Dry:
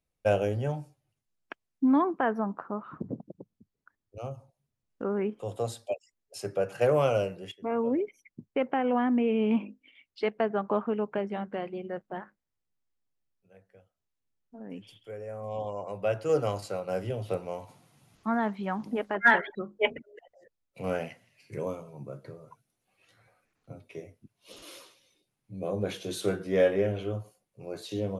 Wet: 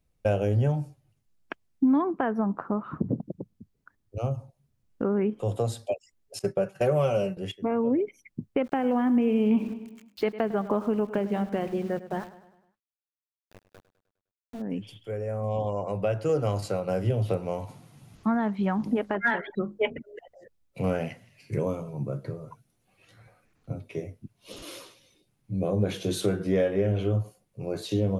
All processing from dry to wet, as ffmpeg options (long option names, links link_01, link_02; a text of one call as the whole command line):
ffmpeg -i in.wav -filter_complex "[0:a]asettb=1/sr,asplit=3[link_01][link_02][link_03];[link_01]atrim=end=6.394[link_04];[link_02]atrim=start=6.39:end=7.37,asetpts=PTS-STARTPTS,afade=type=in:duration=0.004:curve=qsin,afade=type=out:start_time=0.976:duration=0.004:curve=qsin,agate=range=-33dB:threshold=-35dB:ratio=3:release=100:detection=peak,highshelf=frequency=10000:gain=4,aecho=1:1:5.3:0.67,atrim=end_sample=43218[link_05];[link_03]atrim=start=7.366[link_06];[link_04][link_05]acrossfade=duration=0.004:curve1=hsin:curve2=qsin[link_07];[link_07][link_06]acrossfade=duration=0.004:curve1=qsin:curve2=hsin,asettb=1/sr,asplit=3[link_08][link_09][link_10];[link_08]atrim=end=8.644[link_11];[link_09]atrim=start=8.64:end=14.62,asetpts=PTS-STARTPTS,afade=type=in:duration=0.004:curve=qsin,afade=type=out:start_time=5.976:duration=0.004:curve=qsin,aeval=exprs='val(0)*gte(abs(val(0)),0.00335)':channel_layout=same,aecho=1:1:102|204|306|408|510:0.15|0.0763|0.0389|0.0198|0.0101,atrim=end_sample=263718[link_12];[link_10]atrim=start=14.616[link_13];[link_11][link_12]acrossfade=duration=0.004:curve1=hsin:curve2=qsin[link_14];[link_14][link_13]acrossfade=duration=0.004:curve1=qsin:curve2=hsin,acompressor=threshold=-32dB:ratio=2.5,lowshelf=frequency=270:gain=9.5,volume=4.5dB" out.wav